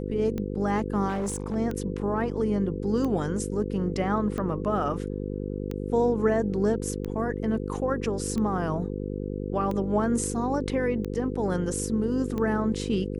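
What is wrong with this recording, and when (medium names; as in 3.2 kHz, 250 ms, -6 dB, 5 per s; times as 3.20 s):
buzz 50 Hz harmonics 10 -32 dBFS
tick 45 rpm -20 dBFS
1.08–1.56 s: clipped -25 dBFS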